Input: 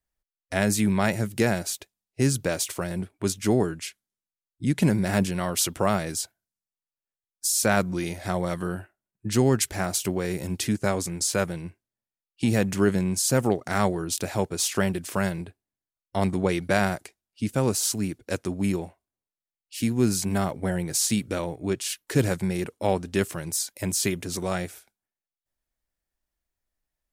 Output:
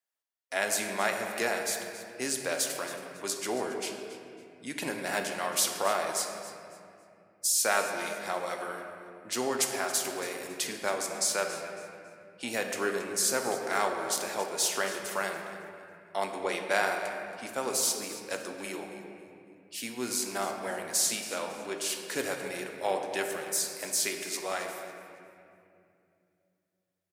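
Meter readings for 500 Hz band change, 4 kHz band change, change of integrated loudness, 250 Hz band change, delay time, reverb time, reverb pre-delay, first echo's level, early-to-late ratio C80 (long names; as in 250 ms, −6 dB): −5.0 dB, −1.5 dB, −5.0 dB, −15.0 dB, 276 ms, 2.6 s, 3 ms, −15.0 dB, 5.0 dB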